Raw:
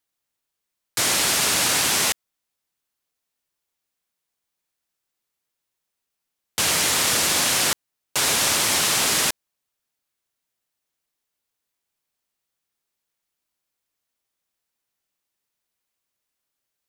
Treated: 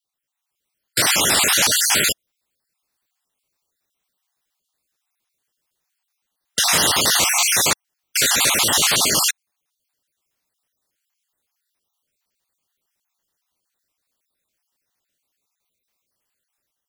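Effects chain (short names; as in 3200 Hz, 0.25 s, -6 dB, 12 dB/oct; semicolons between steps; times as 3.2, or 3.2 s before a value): random spectral dropouts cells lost 45%; AGC gain up to 7 dB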